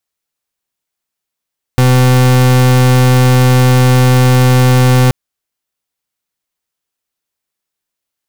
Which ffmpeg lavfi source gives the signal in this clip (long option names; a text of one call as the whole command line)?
ffmpeg -f lavfi -i "aevalsrc='0.422*(2*lt(mod(127*t,1),0.39)-1)':duration=3.33:sample_rate=44100" out.wav